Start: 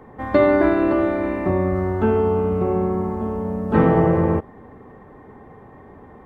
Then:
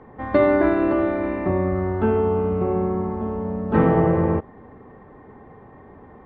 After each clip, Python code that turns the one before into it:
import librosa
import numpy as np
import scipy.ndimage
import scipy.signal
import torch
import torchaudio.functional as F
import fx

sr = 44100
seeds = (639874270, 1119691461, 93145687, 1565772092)

y = scipy.signal.sosfilt(scipy.signal.butter(2, 3700.0, 'lowpass', fs=sr, output='sos'), x)
y = y * 10.0 ** (-1.5 / 20.0)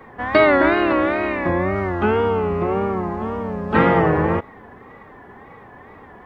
y = fx.tilt_shelf(x, sr, db=-8.5, hz=1200.0)
y = fx.wow_flutter(y, sr, seeds[0], rate_hz=2.1, depth_cents=110.0)
y = y * 10.0 ** (7.5 / 20.0)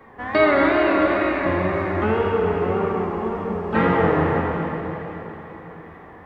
y = fx.rev_plate(x, sr, seeds[1], rt60_s=4.1, hf_ratio=1.0, predelay_ms=0, drr_db=-0.5)
y = y * 10.0 ** (-5.0 / 20.0)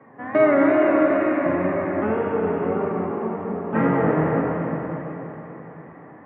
y = fx.cabinet(x, sr, low_hz=110.0, low_slope=24, high_hz=2300.0, hz=(140.0, 270.0, 600.0), db=(10, 9, 6))
y = y + 10.0 ** (-8.5 / 20.0) * np.pad(y, (int(336 * sr / 1000.0), 0))[:len(y)]
y = y * 10.0 ** (-4.5 / 20.0)